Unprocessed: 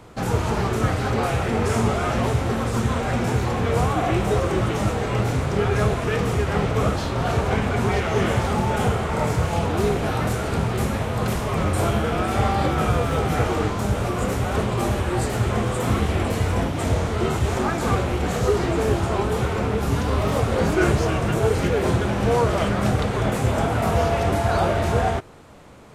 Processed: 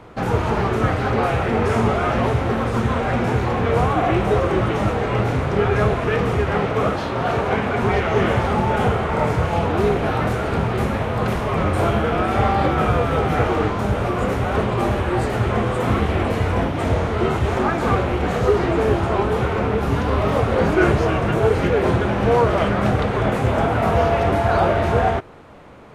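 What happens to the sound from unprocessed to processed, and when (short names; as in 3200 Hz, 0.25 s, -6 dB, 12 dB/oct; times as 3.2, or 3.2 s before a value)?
6.55–7.83 HPF 140 Hz 6 dB/oct
whole clip: tone controls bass -3 dB, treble -12 dB; notch 7600 Hz, Q 21; gain +4 dB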